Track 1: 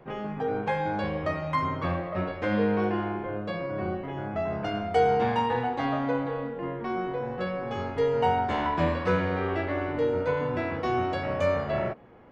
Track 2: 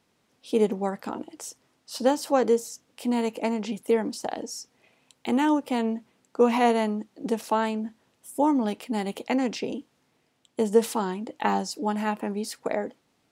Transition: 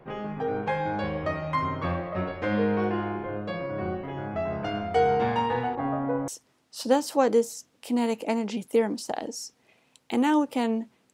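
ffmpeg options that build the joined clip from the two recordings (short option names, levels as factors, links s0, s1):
-filter_complex "[0:a]asettb=1/sr,asplit=3[s0][s1][s2];[s0]atrim=end=5.754[s3];[s1]atrim=start=5.75:end=6.28,asetpts=PTS-STARTPTS,afade=t=in:d=0.004:c=qsin,afade=t=out:st=0.526:d=0.004:c=qsin,lowpass=1200[s4];[s2]atrim=start=6.276[s5];[s3][s4]acrossfade=d=0.004:c1=hsin:c2=qsin[s6];[s6][s5]acrossfade=d=0.004:c1=qsin:c2=hsin,apad=whole_dur=11.13,atrim=end=11.13,atrim=end=6.282[s7];[1:a]atrim=start=1.428:end=6.28[s8];[s7][s8]acrossfade=d=0.004:c1=hsin:c2=hsin"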